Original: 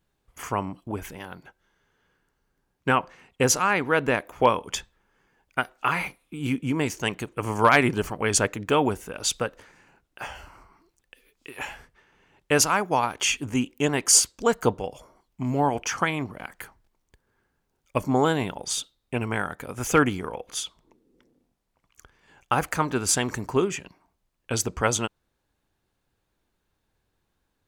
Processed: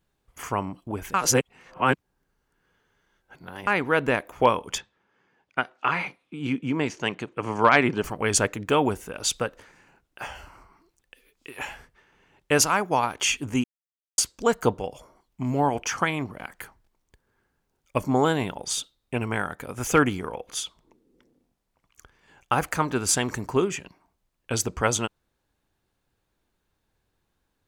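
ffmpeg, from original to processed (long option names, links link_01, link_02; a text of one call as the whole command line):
ffmpeg -i in.wav -filter_complex "[0:a]asettb=1/sr,asplit=3[link_01][link_02][link_03];[link_01]atrim=end=4.784[link_04];[link_02]atrim=start=4.78:end=8.04,asetpts=PTS-STARTPTS,afade=type=in:duration=0.004:curve=qsin,afade=type=out:start_time=3.256:duration=0.004:curve=qsin,highpass=130,lowpass=4900[link_05];[link_03]atrim=start=8.036[link_06];[link_04][link_05]acrossfade=duration=0.004:curve1=hsin:curve2=qsin[link_07];[link_07][link_06]acrossfade=duration=0.004:curve1=qsin:curve2=hsin,asplit=5[link_08][link_09][link_10][link_11][link_12];[link_08]atrim=end=1.142[link_13];[link_09]atrim=start=1.138:end=3.672,asetpts=PTS-STARTPTS,areverse[link_14];[link_10]atrim=start=3.668:end=13.64,asetpts=PTS-STARTPTS,afade=type=out:start_time=9.968:duration=0.004:curve=hsin[link_15];[link_11]atrim=start=13.64:end=14.18,asetpts=PTS-STARTPTS,volume=0[link_16];[link_12]atrim=start=14.18,asetpts=PTS-STARTPTS,afade=type=in:duration=0.004:curve=hsin[link_17];[link_13][link_14]acrossfade=duration=0.004:curve1=hsin:curve2=hsin[link_18];[link_15][link_16][link_17]concat=n=3:v=0:a=1[link_19];[link_18][link_19]acrossfade=duration=0.004:curve1=hsin:curve2=hsin" out.wav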